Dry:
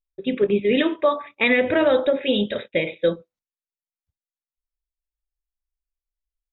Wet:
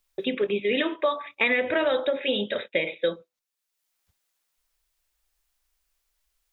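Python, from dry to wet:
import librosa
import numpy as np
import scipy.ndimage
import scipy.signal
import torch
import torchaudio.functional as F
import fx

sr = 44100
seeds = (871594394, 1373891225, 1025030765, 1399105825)

y = fx.low_shelf(x, sr, hz=340.0, db=-12.0)
y = fx.band_squash(y, sr, depth_pct=70)
y = F.gain(torch.from_numpy(y), -1.5).numpy()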